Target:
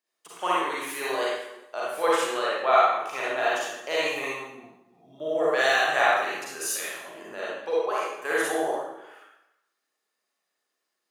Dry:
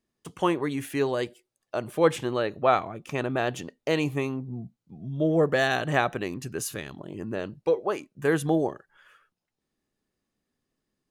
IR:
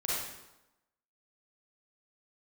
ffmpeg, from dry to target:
-filter_complex "[0:a]highpass=730[a];[1:a]atrim=start_sample=2205[b];[a][b]afir=irnorm=-1:irlink=0"

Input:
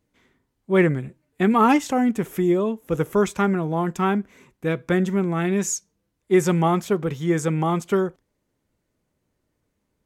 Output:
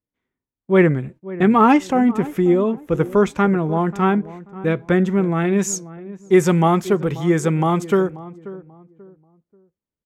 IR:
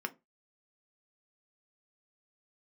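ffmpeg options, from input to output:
-filter_complex "[0:a]asetnsamples=n=441:p=0,asendcmd='5.59 highshelf g -3.5',highshelf=f=4.9k:g=-12,agate=range=-22dB:threshold=-44dB:ratio=16:detection=peak,asplit=2[a][b];[b]adelay=536,lowpass=f=1k:p=1,volume=-16dB,asplit=2[c][d];[d]adelay=536,lowpass=f=1k:p=1,volume=0.31,asplit=2[e][f];[f]adelay=536,lowpass=f=1k:p=1,volume=0.31[g];[a][c][e][g]amix=inputs=4:normalize=0,volume=4dB"

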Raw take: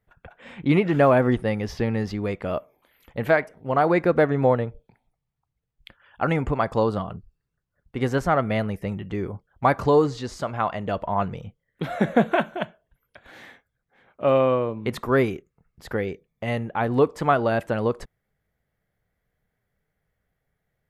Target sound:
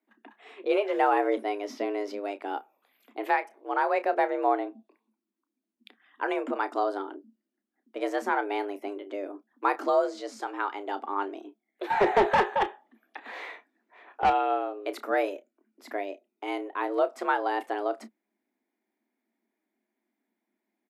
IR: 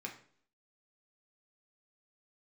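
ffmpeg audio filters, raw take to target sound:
-filter_complex "[0:a]afreqshift=200,asettb=1/sr,asplit=3[a][b][c];[a]atrim=end=11.904[d];[b]atrim=start=11.9:end=14.3,asetpts=PTS-STARTPTS,afade=t=in:d=0.004:c=qsin,afade=t=out:st=2.396:d=0.004:c=qsin,asplit=2[e][f];[f]highpass=f=720:p=1,volume=23dB,asoftclip=type=tanh:threshold=-5dB[g];[e][g]amix=inputs=2:normalize=0,lowpass=f=1.4k:p=1,volume=-6dB[h];[c]atrim=start=14.296[i];[d][h]acrossfade=d=0.004:c1=hsin:c2=qsin[j];[j][i]acrossfade=d=0.004:c1=qsin:c2=hsin,asplit=2[k][l];[l]adelay=31,volume=-13dB[m];[k][m]amix=inputs=2:normalize=0,volume=-6.5dB"

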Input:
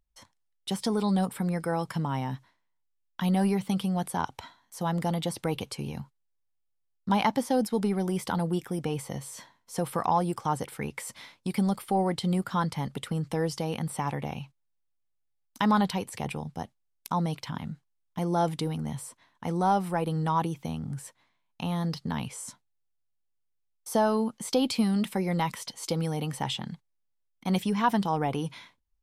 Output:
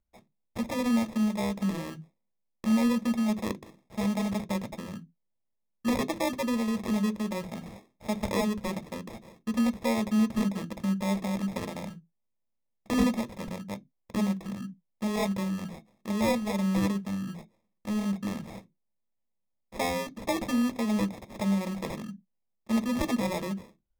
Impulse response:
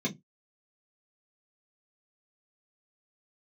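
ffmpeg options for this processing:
-filter_complex "[0:a]acrusher=samples=36:mix=1:aa=0.000001,asetrate=53361,aresample=44100,asplit=2[a][b];[1:a]atrim=start_sample=2205,afade=t=out:st=0.19:d=0.01,atrim=end_sample=8820,highshelf=f=7.7k:g=11.5[c];[b][c]afir=irnorm=-1:irlink=0,volume=-16.5dB[d];[a][d]amix=inputs=2:normalize=0,volume=-3.5dB"

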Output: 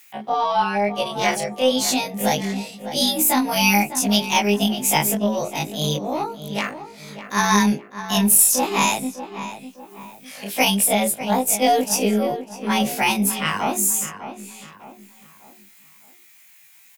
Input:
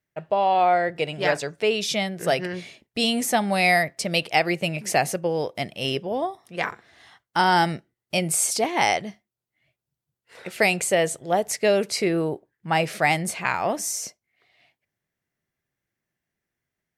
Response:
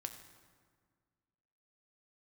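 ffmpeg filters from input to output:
-filter_complex "[0:a]afftfilt=real='re':imag='-im':win_size=2048:overlap=0.75,highpass=96,equalizer=f=160:t=o:w=1.9:g=10,bandreject=f=50:t=h:w=6,bandreject=f=100:t=h:w=6,bandreject=f=150:t=h:w=6,bandreject=f=200:t=h:w=6,bandreject=f=250:t=h:w=6,bandreject=f=300:t=h:w=6,bandreject=f=350:t=h:w=6,bandreject=f=400:t=h:w=6,bandreject=f=450:t=h:w=6,acrossover=split=820[a][b];[b]acompressor=mode=upward:threshold=-39dB:ratio=2.5[c];[a][c]amix=inputs=2:normalize=0,crystalizer=i=2.5:c=0,asetrate=52444,aresample=44100,atempo=0.840896,aeval=exprs='0.631*(cos(1*acos(clip(val(0)/0.631,-1,1)))-cos(1*PI/2))+0.00398*(cos(8*acos(clip(val(0)/0.631,-1,1)))-cos(8*PI/2))':c=same,asplit=2[d][e];[e]adelay=602,lowpass=f=2.3k:p=1,volume=-11dB,asplit=2[f][g];[g]adelay=602,lowpass=f=2.3k:p=1,volume=0.41,asplit=2[h][i];[i]adelay=602,lowpass=f=2.3k:p=1,volume=0.41,asplit=2[j][k];[k]adelay=602,lowpass=f=2.3k:p=1,volume=0.41[l];[f][h][j][l]amix=inputs=4:normalize=0[m];[d][m]amix=inputs=2:normalize=0,volume=3dB"

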